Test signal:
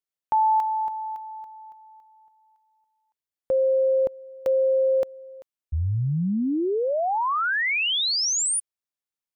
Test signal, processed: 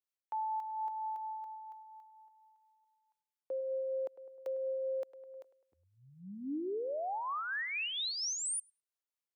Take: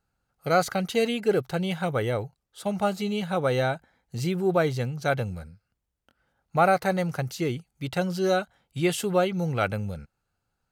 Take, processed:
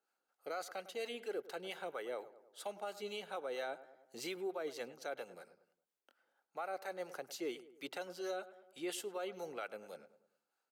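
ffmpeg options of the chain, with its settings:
-filter_complex "[0:a]acrossover=split=620[s0][s1];[s0]aeval=exprs='val(0)*(1-0.5/2+0.5/2*cos(2*PI*4.3*n/s))':c=same[s2];[s1]aeval=exprs='val(0)*(1-0.5/2-0.5/2*cos(2*PI*4.3*n/s))':c=same[s3];[s2][s3]amix=inputs=2:normalize=0,highpass=f=330:w=0.5412,highpass=f=330:w=1.3066,areverse,acompressor=threshold=0.0282:ratio=10:attack=89:release=238:knee=6:detection=rms,areverse,asplit=2[s4][s5];[s5]adelay=103,lowpass=f=1700:p=1,volume=0.158,asplit=2[s6][s7];[s7]adelay=103,lowpass=f=1700:p=1,volume=0.49,asplit=2[s8][s9];[s9]adelay=103,lowpass=f=1700:p=1,volume=0.49,asplit=2[s10][s11];[s11]adelay=103,lowpass=f=1700:p=1,volume=0.49[s12];[s4][s6][s8][s10][s12]amix=inputs=5:normalize=0,alimiter=level_in=1.78:limit=0.0631:level=0:latency=1:release=401,volume=0.562,volume=0.708"

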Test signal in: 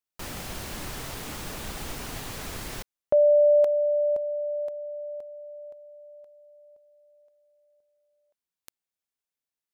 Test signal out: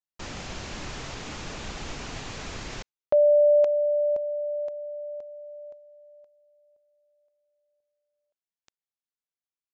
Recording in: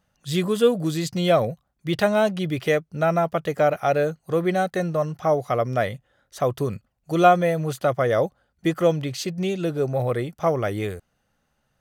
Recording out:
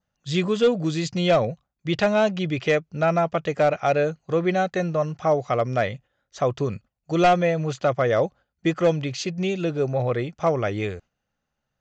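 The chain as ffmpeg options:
-af "agate=range=0.355:threshold=0.00631:ratio=3:release=209:detection=peak,adynamicequalizer=threshold=0.00398:dfrequency=2500:dqfactor=4.3:tfrequency=2500:tqfactor=4.3:attack=5:release=100:ratio=0.375:range=2.5:mode=boostabove:tftype=bell,aresample=16000,asoftclip=type=hard:threshold=0.251,aresample=44100"

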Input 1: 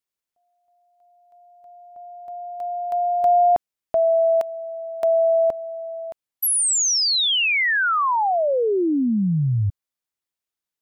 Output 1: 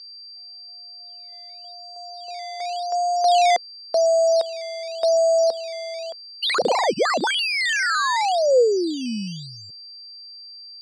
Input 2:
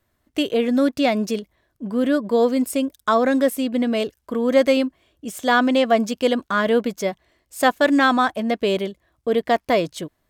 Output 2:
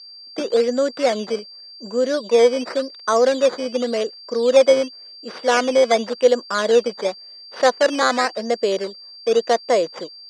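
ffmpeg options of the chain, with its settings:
-af "acrusher=samples=11:mix=1:aa=0.000001:lfo=1:lforange=11:lforate=0.9,aeval=exprs='val(0)+0.0141*sin(2*PI*4700*n/s)':c=same,highpass=f=230:w=0.5412,highpass=f=230:w=1.3066,equalizer=f=280:t=q:w=4:g=-8,equalizer=f=500:t=q:w=4:g=8,equalizer=f=2500:t=q:w=4:g=-4,lowpass=f=7100:w=0.5412,lowpass=f=7100:w=1.3066,volume=0.891"

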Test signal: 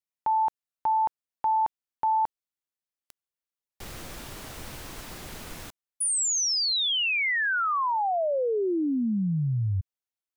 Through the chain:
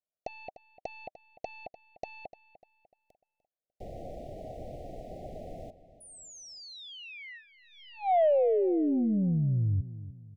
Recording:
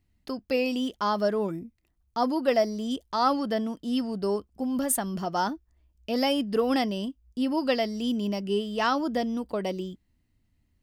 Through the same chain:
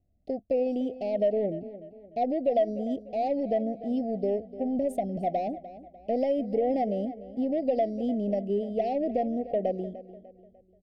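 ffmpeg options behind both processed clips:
-filter_complex "[0:a]firequalizer=gain_entry='entry(350,0);entry(620,11);entry(1800,-17);entry(12000,-26)':delay=0.05:min_phase=1,acompressor=threshold=0.0631:ratio=3:attack=5.7:release=99:knee=1:detection=peak,aeval=exprs='0.188*(cos(1*acos(clip(val(0)/0.188,-1,1)))-cos(1*PI/2))+0.00119*(cos(6*acos(clip(val(0)/0.188,-1,1)))-cos(6*PI/2))+0.00531*(cos(7*acos(clip(val(0)/0.188,-1,1)))-cos(7*PI/2))':c=same,asuperstop=centerf=1200:order=20:qfactor=1.1,asplit=2[s0][s1];[s1]adelay=298,lowpass=f=4600:p=1,volume=0.178,asplit=2[s2][s3];[s3]adelay=298,lowpass=f=4600:p=1,volume=0.41,asplit=2[s4][s5];[s5]adelay=298,lowpass=f=4600:p=1,volume=0.41,asplit=2[s6][s7];[s7]adelay=298,lowpass=f=4600:p=1,volume=0.41[s8];[s2][s4][s6][s8]amix=inputs=4:normalize=0[s9];[s0][s9]amix=inputs=2:normalize=0"

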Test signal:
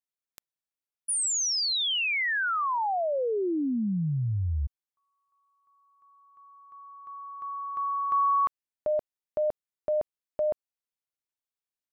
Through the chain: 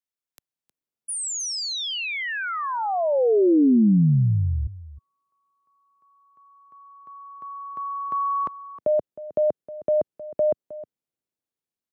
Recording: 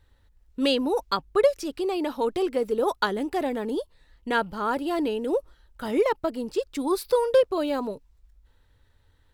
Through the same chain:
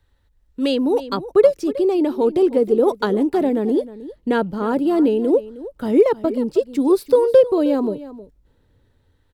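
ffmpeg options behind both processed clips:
-filter_complex "[0:a]aecho=1:1:313:0.158,acrossover=split=110|530|3900[s0][s1][s2][s3];[s1]dynaudnorm=f=170:g=9:m=4.73[s4];[s0][s4][s2][s3]amix=inputs=4:normalize=0,volume=0.841"

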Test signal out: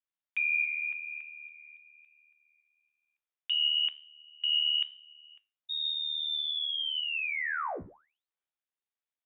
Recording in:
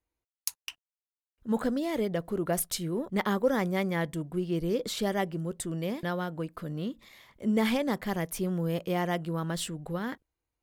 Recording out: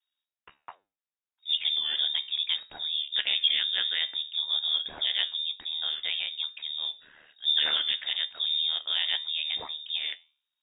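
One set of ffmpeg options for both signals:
-af "aeval=exprs='val(0)*sin(2*PI*38*n/s)':c=same,flanger=delay=9.6:depth=5:regen=81:speed=1.1:shape=sinusoidal,lowpass=f=3200:t=q:w=0.5098,lowpass=f=3200:t=q:w=0.6013,lowpass=f=3200:t=q:w=0.9,lowpass=f=3200:t=q:w=2.563,afreqshift=-3800,volume=2.51"

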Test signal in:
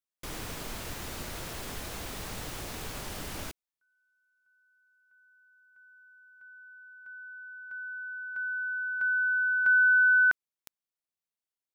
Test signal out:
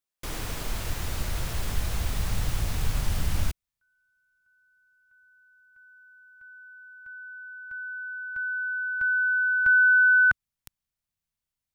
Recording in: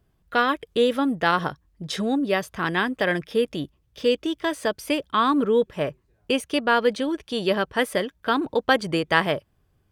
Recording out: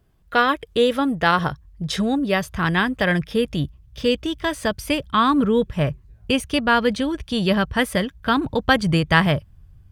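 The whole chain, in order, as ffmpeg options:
-af "asubboost=boost=8.5:cutoff=130,volume=1.5"

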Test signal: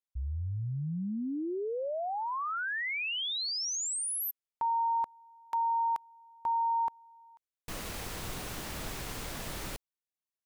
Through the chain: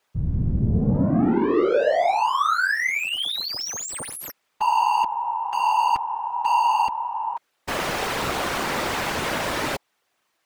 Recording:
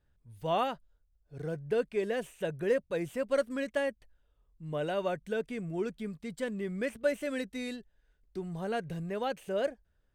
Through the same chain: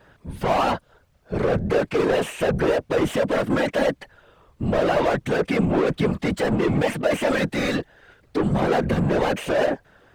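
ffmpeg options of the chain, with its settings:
-filter_complex "[0:a]asplit=2[s0][s1];[s1]highpass=f=720:p=1,volume=70.8,asoftclip=type=tanh:threshold=0.168[s2];[s0][s2]amix=inputs=2:normalize=0,lowpass=f=1300:p=1,volume=0.501,afftfilt=real='hypot(re,im)*cos(2*PI*random(0))':imag='hypot(re,im)*sin(2*PI*random(1))':win_size=512:overlap=0.75,volume=2.82"

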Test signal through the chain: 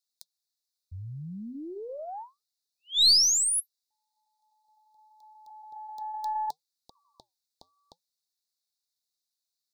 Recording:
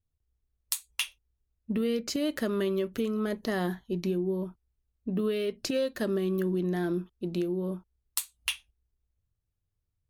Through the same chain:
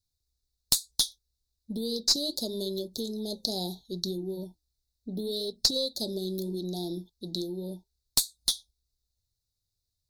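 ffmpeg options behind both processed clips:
-af "equalizer=f=4200:w=1.1:g=14.5,flanger=delay=0.4:depth=6.4:regen=-84:speed=0.73:shape=triangular,asuperstop=centerf=1800:order=20:qfactor=0.67,highshelf=f=3300:g=11,aeval=exprs='(tanh(3.16*val(0)+0.3)-tanh(0.3))/3.16':c=same"

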